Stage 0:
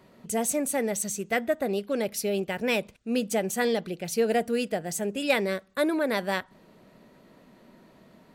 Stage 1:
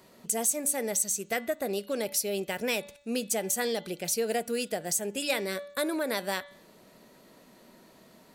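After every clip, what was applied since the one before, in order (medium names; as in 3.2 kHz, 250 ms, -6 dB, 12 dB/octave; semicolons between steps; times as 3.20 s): tone controls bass -5 dB, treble +10 dB; de-hum 287.6 Hz, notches 15; compression 2:1, threshold -29 dBFS, peak gain reduction 8.5 dB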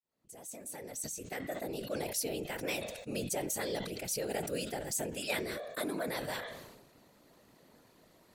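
fade-in on the opening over 2.12 s; whisper effect; decay stretcher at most 46 dB/s; trim -7 dB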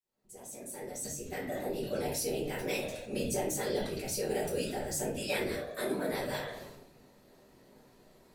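simulated room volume 37 m³, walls mixed, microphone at 1.1 m; trim -5.5 dB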